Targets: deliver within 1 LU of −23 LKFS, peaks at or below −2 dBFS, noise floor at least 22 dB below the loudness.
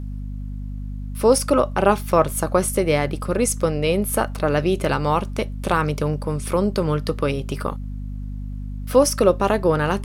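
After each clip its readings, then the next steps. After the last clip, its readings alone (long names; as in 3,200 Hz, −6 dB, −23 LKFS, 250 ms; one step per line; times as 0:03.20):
mains hum 50 Hz; hum harmonics up to 250 Hz; level of the hum −27 dBFS; integrated loudness −20.5 LKFS; sample peak −3.0 dBFS; target loudness −23.0 LKFS
→ hum removal 50 Hz, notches 5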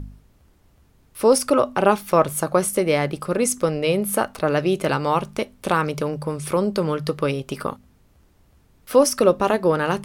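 mains hum none found; integrated loudness −21.0 LKFS; sample peak −3.5 dBFS; target loudness −23.0 LKFS
→ level −2 dB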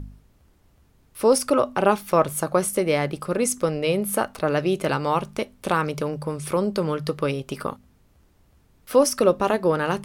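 integrated loudness −23.0 LKFS; sample peak −5.5 dBFS; background noise floor −59 dBFS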